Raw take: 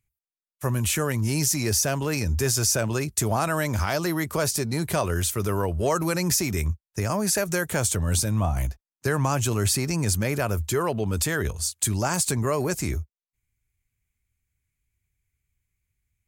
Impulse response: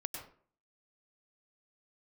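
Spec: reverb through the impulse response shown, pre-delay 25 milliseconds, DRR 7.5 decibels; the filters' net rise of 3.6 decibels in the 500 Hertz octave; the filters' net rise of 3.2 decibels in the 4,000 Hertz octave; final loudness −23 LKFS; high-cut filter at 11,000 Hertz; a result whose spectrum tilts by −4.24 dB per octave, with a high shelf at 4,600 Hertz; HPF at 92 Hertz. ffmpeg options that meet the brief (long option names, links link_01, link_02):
-filter_complex "[0:a]highpass=92,lowpass=11000,equalizer=frequency=500:width_type=o:gain=4.5,equalizer=frequency=4000:width_type=o:gain=8.5,highshelf=frequency=4600:gain=-6.5,asplit=2[link_01][link_02];[1:a]atrim=start_sample=2205,adelay=25[link_03];[link_02][link_03]afir=irnorm=-1:irlink=0,volume=-7.5dB[link_04];[link_01][link_04]amix=inputs=2:normalize=0,volume=1dB"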